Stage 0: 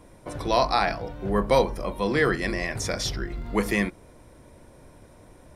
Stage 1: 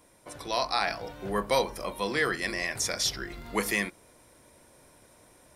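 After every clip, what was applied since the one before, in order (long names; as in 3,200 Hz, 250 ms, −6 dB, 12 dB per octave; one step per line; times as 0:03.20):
spectral tilt +2.5 dB per octave
speech leveller within 4 dB 0.5 s
level −3.5 dB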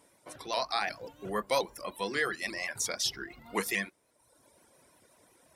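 high-pass filter 150 Hz 6 dB per octave
reverb reduction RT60 0.98 s
pitch modulation by a square or saw wave saw up 5.6 Hz, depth 100 cents
level −2.5 dB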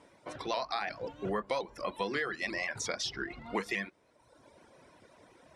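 high-frequency loss of the air 80 metres
downward compressor 6 to 1, threshold −36 dBFS, peak gain reduction 11.5 dB
high-shelf EQ 7,300 Hz −8 dB
level +6 dB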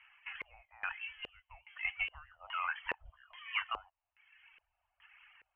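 voice inversion scrambler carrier 3,200 Hz
inverse Chebyshev band-stop filter 160–430 Hz, stop band 50 dB
auto-filter low-pass square 1.2 Hz 490–1,900 Hz
level −3.5 dB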